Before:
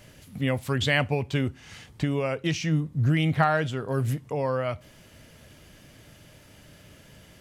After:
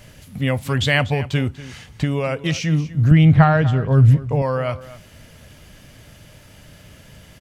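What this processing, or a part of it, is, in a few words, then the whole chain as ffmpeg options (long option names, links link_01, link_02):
low shelf boost with a cut just above: -filter_complex "[0:a]asettb=1/sr,asplit=3[link_01][link_02][link_03];[link_01]atrim=end=3.114[link_04];[link_02]atrim=start=3.11:end=4.42,asetpts=PTS-STARTPTS,afade=type=in:duration=0.004:curve=qsin,afade=type=out:start_time=1.306:duration=0.004:curve=qsin,aemphasis=mode=reproduction:type=bsi[link_05];[link_03]atrim=start=4.416[link_06];[link_04][link_05]acrossfade=duration=0.004:curve1=hsin:curve2=qsin[link_07];[link_07][link_06]acrossfade=duration=0.004:curve1=qsin:curve2=hsin,lowshelf=frequency=80:gain=5.5,equalizer=frequency=340:width_type=o:width=0.65:gain=-4,aecho=1:1:242:0.15,volume=5.5dB"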